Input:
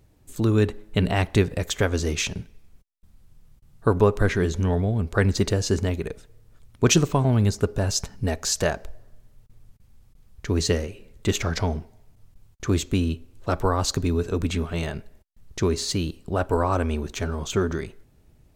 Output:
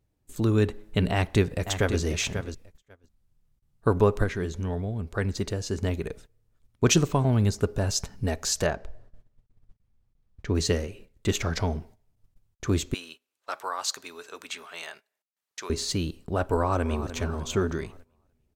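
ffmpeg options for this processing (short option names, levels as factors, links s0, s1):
-filter_complex "[0:a]asplit=2[s0][s1];[s1]afade=t=in:st=1.12:d=0.01,afade=t=out:st=2:d=0.01,aecho=0:1:540|1080:0.354813|0.053222[s2];[s0][s2]amix=inputs=2:normalize=0,asettb=1/sr,asplit=3[s3][s4][s5];[s3]atrim=end=8.664[s6];[s4]atrim=start=8.66:end=10.55,asetpts=PTS-STARTPTS,afade=t=in:d=0.004:c=qsin,afade=t=out:st=1.886:d=0.004:c=qsin,aemphasis=mode=reproduction:type=50fm[s7];[s5]atrim=start=10.546[s8];[s6][s7]acrossfade=d=0.004:c1=hsin:c2=qsin[s9];[s9][s8]acrossfade=d=0.004:c1=qsin:c2=hsin,asettb=1/sr,asplit=3[s10][s11][s12];[s10]atrim=end=12.944[s13];[s11]atrim=start=12.94:end=15.7,asetpts=PTS-STARTPTS,afade=t=in:d=0.004:c=qsin,afade=t=out:st=2.756:d=0.004:c=qsin,highpass=990[s14];[s12]atrim=start=15.696[s15];[s13][s14]acrossfade=d=0.004:c1=hsin:c2=qsin[s16];[s16][s15]acrossfade=d=0.004:c1=qsin:c2=hsin,asplit=2[s17][s18];[s18]afade=t=in:st=16.55:d=0.01,afade=t=out:st=17.12:d=0.01,aecho=0:1:300|600|900|1200|1500:0.251189|0.125594|0.0627972|0.0313986|0.0156993[s19];[s17][s19]amix=inputs=2:normalize=0,asplit=3[s20][s21][s22];[s20]atrim=end=4.242[s23];[s21]atrim=start=4.238:end=5.832,asetpts=PTS-STARTPTS,volume=0.562[s24];[s22]atrim=start=5.828[s25];[s23][s24]acrossfade=d=0.004:c1=hsin:c2=hsin[s26];[s26][s25]acrossfade=d=0.004:c1=hsin:c2=hsin,agate=range=0.224:threshold=0.00631:ratio=16:detection=peak,volume=0.75"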